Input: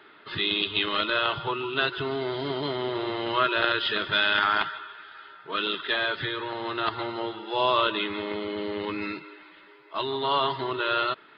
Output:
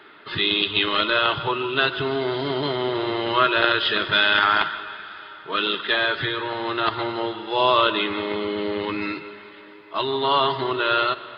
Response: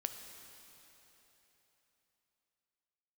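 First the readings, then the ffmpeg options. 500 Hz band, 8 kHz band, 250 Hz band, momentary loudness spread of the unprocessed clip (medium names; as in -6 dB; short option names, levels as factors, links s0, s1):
+5.0 dB, no reading, +5.0 dB, 10 LU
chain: -filter_complex "[0:a]asplit=2[s0][s1];[1:a]atrim=start_sample=2205,asetrate=43659,aresample=44100[s2];[s1][s2]afir=irnorm=-1:irlink=0,volume=0.668[s3];[s0][s3]amix=inputs=2:normalize=0,volume=1.12"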